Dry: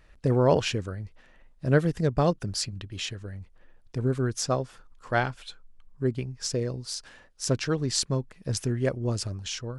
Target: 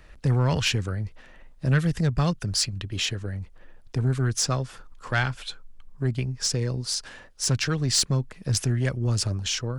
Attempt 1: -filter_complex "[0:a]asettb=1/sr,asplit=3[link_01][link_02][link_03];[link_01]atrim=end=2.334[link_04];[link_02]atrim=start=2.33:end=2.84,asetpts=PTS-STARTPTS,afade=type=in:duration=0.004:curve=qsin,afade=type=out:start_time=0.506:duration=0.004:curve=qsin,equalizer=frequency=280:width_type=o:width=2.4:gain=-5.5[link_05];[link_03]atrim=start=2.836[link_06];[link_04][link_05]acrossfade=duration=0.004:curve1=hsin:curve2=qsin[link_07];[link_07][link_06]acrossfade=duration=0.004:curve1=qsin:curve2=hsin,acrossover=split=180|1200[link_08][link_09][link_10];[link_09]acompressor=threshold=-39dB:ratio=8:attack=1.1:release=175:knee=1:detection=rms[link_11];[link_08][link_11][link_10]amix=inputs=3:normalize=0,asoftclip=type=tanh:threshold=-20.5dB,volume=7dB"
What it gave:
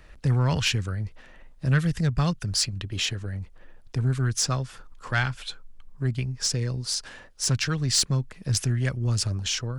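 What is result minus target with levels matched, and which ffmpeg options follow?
downward compressor: peak gain reduction +5.5 dB
-filter_complex "[0:a]asettb=1/sr,asplit=3[link_01][link_02][link_03];[link_01]atrim=end=2.334[link_04];[link_02]atrim=start=2.33:end=2.84,asetpts=PTS-STARTPTS,afade=type=in:duration=0.004:curve=qsin,afade=type=out:start_time=0.506:duration=0.004:curve=qsin,equalizer=frequency=280:width_type=o:width=2.4:gain=-5.5[link_05];[link_03]atrim=start=2.836[link_06];[link_04][link_05]acrossfade=duration=0.004:curve1=hsin:curve2=qsin[link_07];[link_07][link_06]acrossfade=duration=0.004:curve1=qsin:curve2=hsin,acrossover=split=180|1200[link_08][link_09][link_10];[link_09]acompressor=threshold=-33dB:ratio=8:attack=1.1:release=175:knee=1:detection=rms[link_11];[link_08][link_11][link_10]amix=inputs=3:normalize=0,asoftclip=type=tanh:threshold=-20.5dB,volume=7dB"

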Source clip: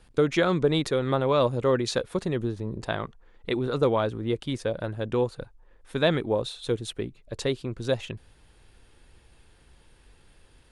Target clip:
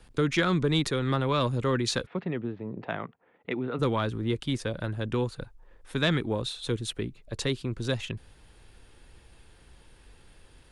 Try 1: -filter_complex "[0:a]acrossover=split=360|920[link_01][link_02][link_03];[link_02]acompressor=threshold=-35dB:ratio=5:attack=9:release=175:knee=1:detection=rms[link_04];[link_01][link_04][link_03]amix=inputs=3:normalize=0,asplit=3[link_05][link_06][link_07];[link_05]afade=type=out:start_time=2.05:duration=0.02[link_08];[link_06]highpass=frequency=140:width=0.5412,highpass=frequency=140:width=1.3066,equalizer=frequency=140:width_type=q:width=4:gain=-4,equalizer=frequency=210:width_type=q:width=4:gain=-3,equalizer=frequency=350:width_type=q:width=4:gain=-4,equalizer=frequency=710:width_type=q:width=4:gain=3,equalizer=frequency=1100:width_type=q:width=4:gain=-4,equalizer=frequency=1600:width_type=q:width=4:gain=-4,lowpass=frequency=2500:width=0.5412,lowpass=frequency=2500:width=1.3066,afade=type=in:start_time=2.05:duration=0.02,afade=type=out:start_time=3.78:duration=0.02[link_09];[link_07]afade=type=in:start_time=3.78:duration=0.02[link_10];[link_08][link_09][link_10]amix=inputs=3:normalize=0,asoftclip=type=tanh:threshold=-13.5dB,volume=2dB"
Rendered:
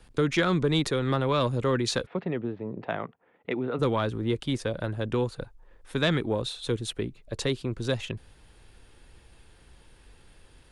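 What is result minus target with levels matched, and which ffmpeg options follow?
downward compressor: peak gain reduction −7.5 dB
-filter_complex "[0:a]acrossover=split=360|920[link_01][link_02][link_03];[link_02]acompressor=threshold=-44.5dB:ratio=5:attack=9:release=175:knee=1:detection=rms[link_04];[link_01][link_04][link_03]amix=inputs=3:normalize=0,asplit=3[link_05][link_06][link_07];[link_05]afade=type=out:start_time=2.05:duration=0.02[link_08];[link_06]highpass=frequency=140:width=0.5412,highpass=frequency=140:width=1.3066,equalizer=frequency=140:width_type=q:width=4:gain=-4,equalizer=frequency=210:width_type=q:width=4:gain=-3,equalizer=frequency=350:width_type=q:width=4:gain=-4,equalizer=frequency=710:width_type=q:width=4:gain=3,equalizer=frequency=1100:width_type=q:width=4:gain=-4,equalizer=frequency=1600:width_type=q:width=4:gain=-4,lowpass=frequency=2500:width=0.5412,lowpass=frequency=2500:width=1.3066,afade=type=in:start_time=2.05:duration=0.02,afade=type=out:start_time=3.78:duration=0.02[link_09];[link_07]afade=type=in:start_time=3.78:duration=0.02[link_10];[link_08][link_09][link_10]amix=inputs=3:normalize=0,asoftclip=type=tanh:threshold=-13.5dB,volume=2dB"

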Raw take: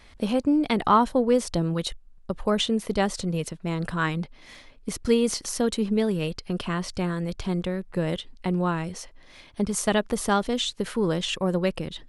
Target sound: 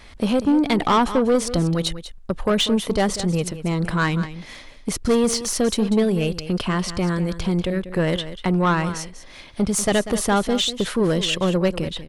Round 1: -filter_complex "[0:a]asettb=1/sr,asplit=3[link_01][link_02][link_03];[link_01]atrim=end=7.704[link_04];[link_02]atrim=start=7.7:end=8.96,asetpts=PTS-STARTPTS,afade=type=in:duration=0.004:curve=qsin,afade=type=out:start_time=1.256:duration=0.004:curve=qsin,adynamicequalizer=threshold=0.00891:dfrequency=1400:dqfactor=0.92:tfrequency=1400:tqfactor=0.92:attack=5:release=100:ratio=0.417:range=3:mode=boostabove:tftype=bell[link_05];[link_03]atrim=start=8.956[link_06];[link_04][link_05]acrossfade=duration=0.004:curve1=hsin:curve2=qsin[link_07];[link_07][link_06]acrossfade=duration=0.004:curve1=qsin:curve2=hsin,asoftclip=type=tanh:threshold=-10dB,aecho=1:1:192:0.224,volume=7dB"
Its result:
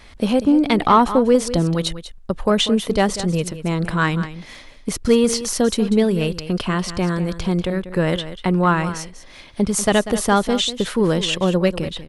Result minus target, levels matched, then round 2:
soft clipping: distortion −12 dB
-filter_complex "[0:a]asettb=1/sr,asplit=3[link_01][link_02][link_03];[link_01]atrim=end=7.704[link_04];[link_02]atrim=start=7.7:end=8.96,asetpts=PTS-STARTPTS,afade=type=in:duration=0.004:curve=qsin,afade=type=out:start_time=1.256:duration=0.004:curve=qsin,adynamicequalizer=threshold=0.00891:dfrequency=1400:dqfactor=0.92:tfrequency=1400:tqfactor=0.92:attack=5:release=100:ratio=0.417:range=3:mode=boostabove:tftype=bell[link_05];[link_03]atrim=start=8.956[link_06];[link_04][link_05]acrossfade=duration=0.004:curve1=hsin:curve2=qsin[link_07];[link_07][link_06]acrossfade=duration=0.004:curve1=qsin:curve2=hsin,asoftclip=type=tanh:threshold=-19.5dB,aecho=1:1:192:0.224,volume=7dB"

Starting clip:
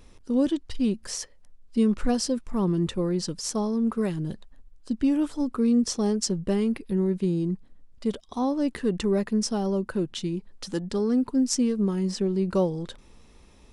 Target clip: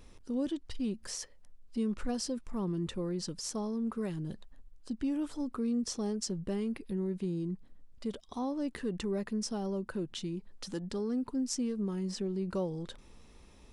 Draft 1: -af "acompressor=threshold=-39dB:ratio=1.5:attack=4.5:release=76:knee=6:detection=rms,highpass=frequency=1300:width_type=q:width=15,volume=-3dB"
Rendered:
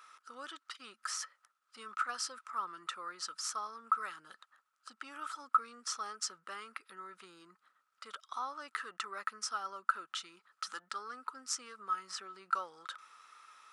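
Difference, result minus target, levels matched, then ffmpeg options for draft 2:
1,000 Hz band +14.0 dB
-af "acompressor=threshold=-39dB:ratio=1.5:attack=4.5:release=76:knee=6:detection=rms,volume=-3dB"

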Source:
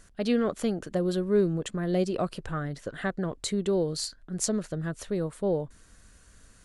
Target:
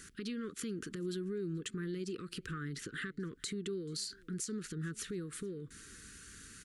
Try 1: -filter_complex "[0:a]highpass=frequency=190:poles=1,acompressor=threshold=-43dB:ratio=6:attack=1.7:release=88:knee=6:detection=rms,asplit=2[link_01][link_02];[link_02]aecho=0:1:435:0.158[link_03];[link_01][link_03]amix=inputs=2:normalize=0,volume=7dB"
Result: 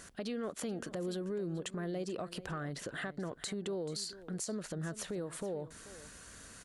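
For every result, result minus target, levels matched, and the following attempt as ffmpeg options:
echo-to-direct +10 dB; 1,000 Hz band +5.5 dB
-filter_complex "[0:a]highpass=frequency=190:poles=1,acompressor=threshold=-43dB:ratio=6:attack=1.7:release=88:knee=6:detection=rms,asplit=2[link_01][link_02];[link_02]aecho=0:1:435:0.0501[link_03];[link_01][link_03]amix=inputs=2:normalize=0,volume=7dB"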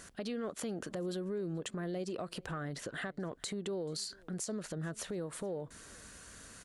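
1,000 Hz band +5.5 dB
-filter_complex "[0:a]highpass=frequency=190:poles=1,acompressor=threshold=-43dB:ratio=6:attack=1.7:release=88:knee=6:detection=rms,asuperstop=centerf=730:order=8:qfactor=0.89,asplit=2[link_01][link_02];[link_02]aecho=0:1:435:0.0501[link_03];[link_01][link_03]amix=inputs=2:normalize=0,volume=7dB"

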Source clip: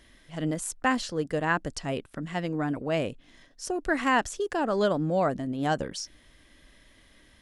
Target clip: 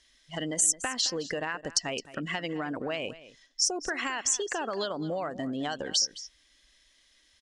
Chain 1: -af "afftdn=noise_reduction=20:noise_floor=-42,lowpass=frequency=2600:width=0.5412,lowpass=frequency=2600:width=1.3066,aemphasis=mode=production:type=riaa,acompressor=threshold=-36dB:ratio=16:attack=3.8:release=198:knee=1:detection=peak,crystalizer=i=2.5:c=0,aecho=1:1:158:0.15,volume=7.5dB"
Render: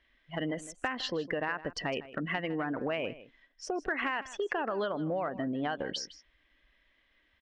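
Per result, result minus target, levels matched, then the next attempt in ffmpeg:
8,000 Hz band −17.0 dB; echo 57 ms early
-af "afftdn=noise_reduction=20:noise_floor=-42,lowpass=frequency=6100:width=0.5412,lowpass=frequency=6100:width=1.3066,aemphasis=mode=production:type=riaa,acompressor=threshold=-36dB:ratio=16:attack=3.8:release=198:knee=1:detection=peak,crystalizer=i=2.5:c=0,aecho=1:1:158:0.15,volume=7.5dB"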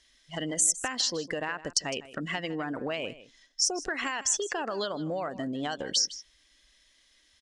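echo 57 ms early
-af "afftdn=noise_reduction=20:noise_floor=-42,lowpass=frequency=6100:width=0.5412,lowpass=frequency=6100:width=1.3066,aemphasis=mode=production:type=riaa,acompressor=threshold=-36dB:ratio=16:attack=3.8:release=198:knee=1:detection=peak,crystalizer=i=2.5:c=0,aecho=1:1:215:0.15,volume=7.5dB"

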